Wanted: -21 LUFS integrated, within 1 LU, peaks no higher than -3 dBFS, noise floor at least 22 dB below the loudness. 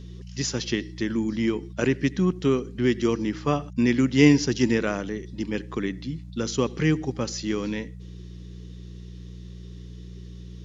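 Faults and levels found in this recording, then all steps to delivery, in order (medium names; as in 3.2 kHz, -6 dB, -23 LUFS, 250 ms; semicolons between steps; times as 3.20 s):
hum 60 Hz; highest harmonic 180 Hz; hum level -38 dBFS; loudness -25.0 LUFS; peak level -3.0 dBFS; loudness target -21.0 LUFS
-> de-hum 60 Hz, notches 3; trim +4 dB; peak limiter -3 dBFS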